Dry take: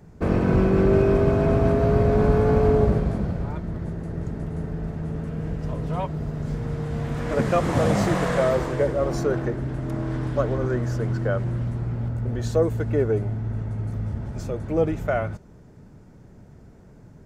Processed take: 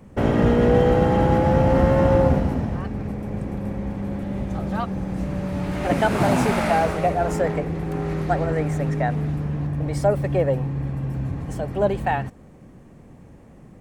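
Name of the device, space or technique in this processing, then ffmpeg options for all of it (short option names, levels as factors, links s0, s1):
nightcore: -af "asetrate=55125,aresample=44100,volume=1.19"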